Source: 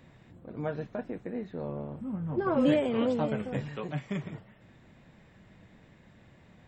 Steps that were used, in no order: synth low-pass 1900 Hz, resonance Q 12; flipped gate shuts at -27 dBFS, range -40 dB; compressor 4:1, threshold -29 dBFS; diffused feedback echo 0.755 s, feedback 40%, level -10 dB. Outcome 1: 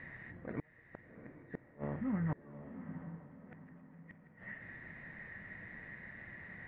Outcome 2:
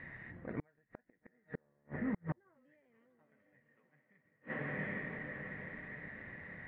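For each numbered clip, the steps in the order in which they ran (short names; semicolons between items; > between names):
synth low-pass > compressor > flipped gate > diffused feedback echo; diffused feedback echo > compressor > synth low-pass > flipped gate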